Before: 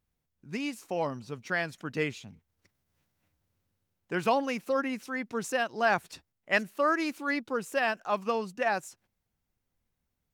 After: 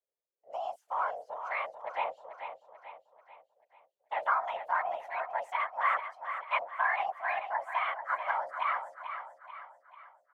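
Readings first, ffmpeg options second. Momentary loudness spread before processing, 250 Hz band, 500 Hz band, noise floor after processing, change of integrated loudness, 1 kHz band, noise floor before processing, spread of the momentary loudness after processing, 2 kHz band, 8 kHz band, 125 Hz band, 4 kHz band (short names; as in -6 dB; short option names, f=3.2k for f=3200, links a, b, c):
8 LU, under -35 dB, -9.0 dB, -85 dBFS, -3.0 dB, +2.0 dB, -83 dBFS, 16 LU, -3.0 dB, under -20 dB, under -30 dB, -8.5 dB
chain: -filter_complex "[0:a]highshelf=f=5.7k:g=-5.5,afwtdn=0.0178,afreqshift=450,acrossover=split=160|1000|2300[a][b][c][d];[d]acompressor=threshold=-53dB:ratio=6[e];[a][b][c][e]amix=inputs=4:normalize=0,afftfilt=real='hypot(re,im)*cos(2*PI*random(0))':imag='hypot(re,im)*sin(2*PI*random(1))':win_size=512:overlap=0.75,highpass=49,aecho=1:1:439|878|1317|1756|2195:0.355|0.163|0.0751|0.0345|0.0159,volume=4dB"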